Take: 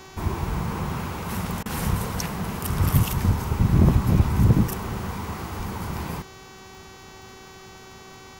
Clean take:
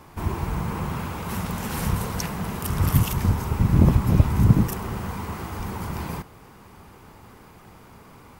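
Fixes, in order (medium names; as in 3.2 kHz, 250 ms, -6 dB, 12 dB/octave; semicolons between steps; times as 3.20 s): clip repair -9 dBFS; de-click; de-hum 381 Hz, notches 19; interpolate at 1.63 s, 26 ms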